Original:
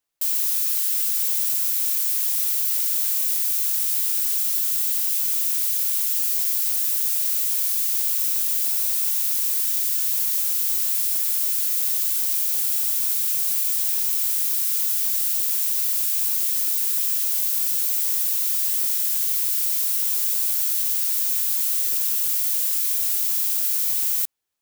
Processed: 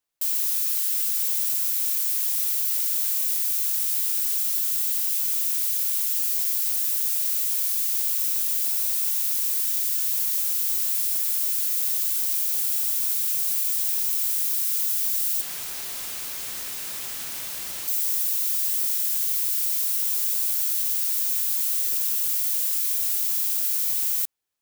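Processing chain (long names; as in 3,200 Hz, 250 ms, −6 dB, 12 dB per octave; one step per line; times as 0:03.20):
0:15.41–0:17.88: mid-hump overdrive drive 12 dB, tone 2,300 Hz, clips at −8.5 dBFS
level −2 dB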